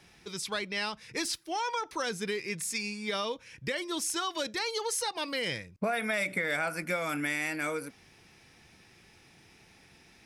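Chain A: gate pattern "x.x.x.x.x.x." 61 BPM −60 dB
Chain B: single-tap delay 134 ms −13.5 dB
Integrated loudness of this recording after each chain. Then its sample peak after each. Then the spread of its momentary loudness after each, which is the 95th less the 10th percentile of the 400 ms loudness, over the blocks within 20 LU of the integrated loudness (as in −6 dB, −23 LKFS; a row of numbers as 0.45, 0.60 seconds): −35.0, −32.5 LKFS; −18.5, −18.5 dBFS; 9, 5 LU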